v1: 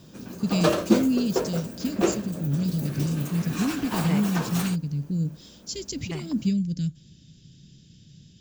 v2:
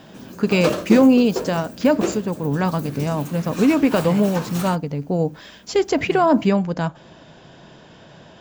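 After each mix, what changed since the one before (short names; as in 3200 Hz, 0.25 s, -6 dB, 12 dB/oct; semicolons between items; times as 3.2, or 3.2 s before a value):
first voice: remove Chebyshev band-stop 150–5300 Hz, order 2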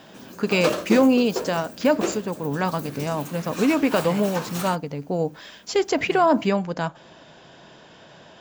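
master: add low shelf 270 Hz -9 dB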